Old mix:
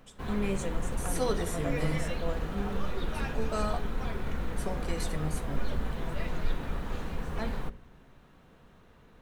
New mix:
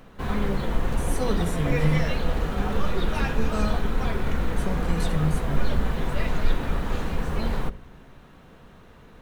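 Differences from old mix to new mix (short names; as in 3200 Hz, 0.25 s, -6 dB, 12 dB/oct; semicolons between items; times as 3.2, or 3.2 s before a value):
first voice: add steep low-pass 890 Hz 96 dB/oct; second voice: add bell 170 Hz +12.5 dB 0.84 oct; background +8.0 dB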